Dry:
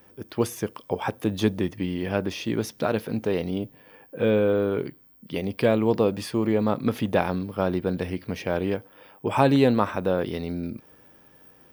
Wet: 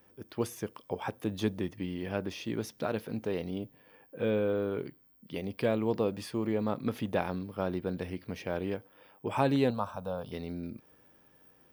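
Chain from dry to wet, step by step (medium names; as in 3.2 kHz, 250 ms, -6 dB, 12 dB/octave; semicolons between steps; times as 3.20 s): 9.70–10.32 s: static phaser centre 830 Hz, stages 4; trim -8 dB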